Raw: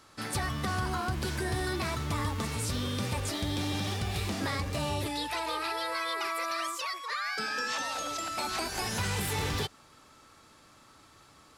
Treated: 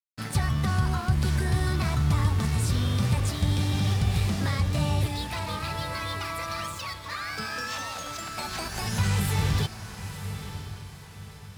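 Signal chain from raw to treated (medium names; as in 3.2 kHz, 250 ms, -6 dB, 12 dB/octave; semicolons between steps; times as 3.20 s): resonant low shelf 220 Hz +8 dB, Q 1.5; crossover distortion -44 dBFS; echo that smears into a reverb 993 ms, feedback 42%, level -10.5 dB; trim +1.5 dB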